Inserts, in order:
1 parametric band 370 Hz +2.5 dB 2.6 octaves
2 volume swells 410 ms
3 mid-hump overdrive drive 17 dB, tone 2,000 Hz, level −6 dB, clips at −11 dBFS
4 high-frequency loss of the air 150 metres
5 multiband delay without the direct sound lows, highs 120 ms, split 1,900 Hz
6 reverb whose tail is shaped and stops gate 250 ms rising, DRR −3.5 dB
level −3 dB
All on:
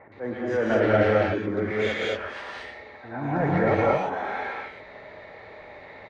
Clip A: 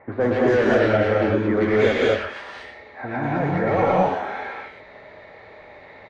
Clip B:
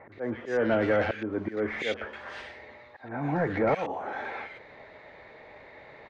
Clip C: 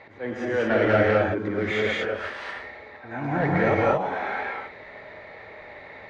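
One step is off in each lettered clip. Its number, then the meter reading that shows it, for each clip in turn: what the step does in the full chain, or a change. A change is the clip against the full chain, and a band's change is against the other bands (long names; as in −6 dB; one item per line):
2, 250 Hz band +1.5 dB
6, echo-to-direct ratio 5.5 dB to −3.5 dB
5, echo-to-direct ratio 5.5 dB to 3.5 dB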